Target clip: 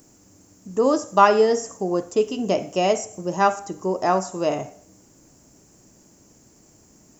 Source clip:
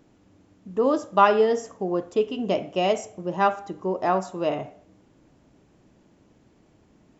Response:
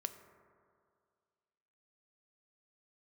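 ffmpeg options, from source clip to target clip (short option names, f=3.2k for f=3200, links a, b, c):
-filter_complex "[0:a]aexciter=amount=12.7:drive=3.4:freq=5.3k,acrossover=split=4000[a][b];[b]acompressor=threshold=-40dB:ratio=4:attack=1:release=60[c];[a][c]amix=inputs=2:normalize=0,volume=2.5dB"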